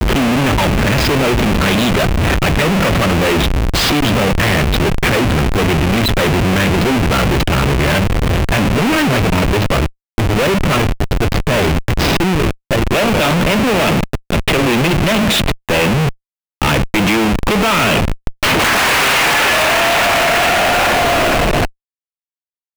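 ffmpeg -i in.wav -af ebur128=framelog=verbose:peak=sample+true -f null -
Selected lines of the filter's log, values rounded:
Integrated loudness:
  I:         -13.8 LUFS
  Threshold: -23.8 LUFS
Loudness range:
  LRA:         3.1 LU
  Threshold: -33.9 LUFS
  LRA low:   -15.0 LUFS
  LRA high:  -11.9 LUFS
Sample peak:
  Peak:       -4.9 dBFS
True peak:
  Peak:       -4.6 dBFS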